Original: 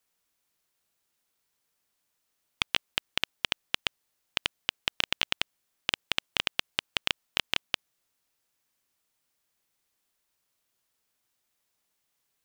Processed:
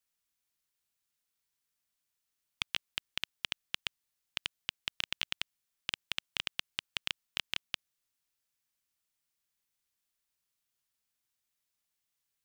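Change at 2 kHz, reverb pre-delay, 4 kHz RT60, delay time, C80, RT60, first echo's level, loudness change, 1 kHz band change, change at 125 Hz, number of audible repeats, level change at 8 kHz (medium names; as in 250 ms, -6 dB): -7.5 dB, no reverb, no reverb, no echo, no reverb, no reverb, no echo, -7.0 dB, -10.5 dB, -7.5 dB, no echo, -6.0 dB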